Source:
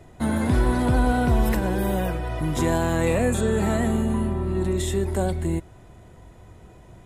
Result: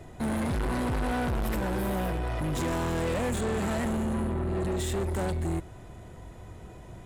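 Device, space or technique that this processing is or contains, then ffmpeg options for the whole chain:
saturation between pre-emphasis and de-emphasis: -af "highshelf=f=7.1k:g=9,asoftclip=type=tanh:threshold=-28.5dB,highshelf=f=7.1k:g=-9,volume=2dB"

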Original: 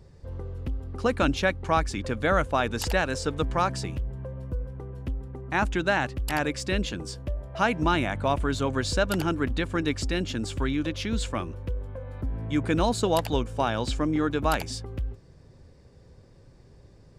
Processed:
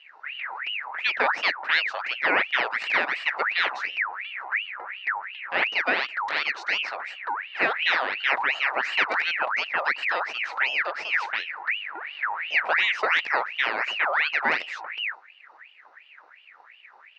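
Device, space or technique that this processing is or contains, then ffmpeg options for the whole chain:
voice changer toy: -af "aeval=exprs='val(0)*sin(2*PI*1900*n/s+1900*0.55/2.8*sin(2*PI*2.8*n/s))':c=same,highpass=450,equalizer=f=1.1k:t=q:w=4:g=-4,equalizer=f=1.9k:t=q:w=4:g=4,equalizer=f=3.3k:t=q:w=4:g=-10,lowpass=f=4.1k:w=0.5412,lowpass=f=4.1k:w=1.3066,volume=4.5dB"

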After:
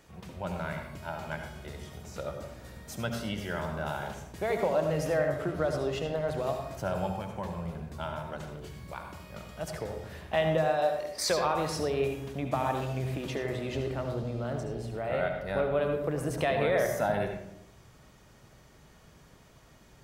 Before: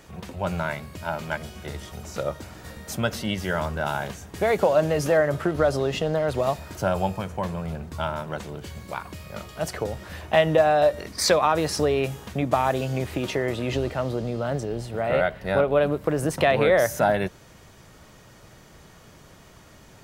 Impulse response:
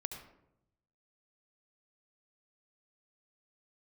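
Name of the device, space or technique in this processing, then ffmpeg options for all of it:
bathroom: -filter_complex "[0:a]asettb=1/sr,asplit=3[a][b][c];[a]atrim=end=10.574[d];[b]atrim=start=10.57:end=11.3,asetpts=PTS-STARTPTS,afade=t=in:d=0.004:c=qsin,afade=t=out:st=0.726:d=0.004:c=qsin,bass=f=250:g=-11,treble=f=4k:g=2[e];[c]atrim=start=11.296[f];[d][e]acrossfade=d=0.004:c1=hsin:c2=qsin[g];[g][f]acrossfade=d=0.004:c1=qsin:c2=hsin[h];[1:a]atrim=start_sample=2205[i];[h][i]afir=irnorm=-1:irlink=0,volume=-6.5dB"

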